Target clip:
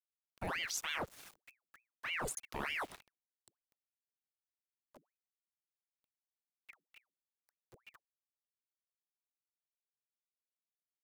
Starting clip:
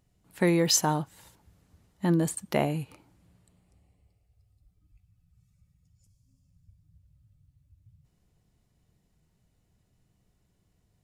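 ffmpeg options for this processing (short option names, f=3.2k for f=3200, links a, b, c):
-af "areverse,acompressor=threshold=-38dB:ratio=8,areverse,aeval=exprs='val(0)*gte(abs(val(0)),0.00237)':c=same,afreqshift=59,aeval=exprs='val(0)*sin(2*PI*1400*n/s+1400*0.85/3.3*sin(2*PI*3.3*n/s))':c=same,volume=3.5dB"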